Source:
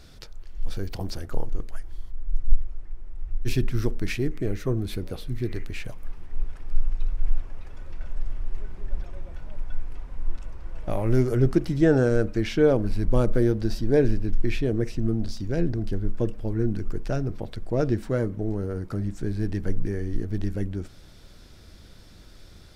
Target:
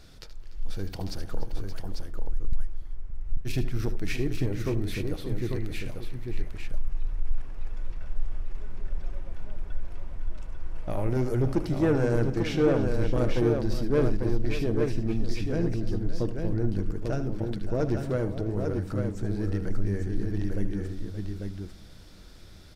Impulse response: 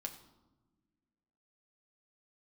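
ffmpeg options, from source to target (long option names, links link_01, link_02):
-filter_complex "[0:a]asoftclip=type=tanh:threshold=-15.5dB,aecho=1:1:76|293|575|845:0.251|0.141|0.237|0.562,asplit=2[link_01][link_02];[1:a]atrim=start_sample=2205[link_03];[link_02][link_03]afir=irnorm=-1:irlink=0,volume=-9dB[link_04];[link_01][link_04]amix=inputs=2:normalize=0,volume=-4dB"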